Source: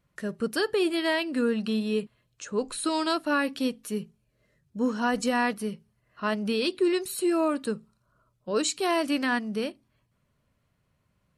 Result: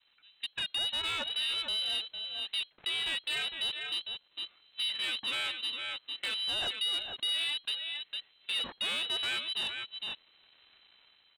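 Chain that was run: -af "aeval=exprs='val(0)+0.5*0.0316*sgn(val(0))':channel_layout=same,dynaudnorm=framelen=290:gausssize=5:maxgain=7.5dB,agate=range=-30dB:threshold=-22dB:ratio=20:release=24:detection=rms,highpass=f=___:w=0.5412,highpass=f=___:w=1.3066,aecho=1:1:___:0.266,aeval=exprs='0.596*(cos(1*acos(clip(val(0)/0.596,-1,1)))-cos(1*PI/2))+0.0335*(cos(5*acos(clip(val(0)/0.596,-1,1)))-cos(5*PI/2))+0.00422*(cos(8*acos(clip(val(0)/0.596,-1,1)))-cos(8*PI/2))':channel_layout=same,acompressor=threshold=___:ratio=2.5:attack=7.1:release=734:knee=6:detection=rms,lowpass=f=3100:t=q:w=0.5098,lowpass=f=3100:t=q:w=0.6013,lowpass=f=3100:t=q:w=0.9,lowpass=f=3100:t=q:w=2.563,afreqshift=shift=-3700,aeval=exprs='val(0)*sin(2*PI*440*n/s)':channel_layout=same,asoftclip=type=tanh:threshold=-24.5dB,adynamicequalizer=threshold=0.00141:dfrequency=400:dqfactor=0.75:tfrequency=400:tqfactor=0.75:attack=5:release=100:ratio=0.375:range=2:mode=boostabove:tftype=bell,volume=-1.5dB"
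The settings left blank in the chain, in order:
100, 100, 455, -28dB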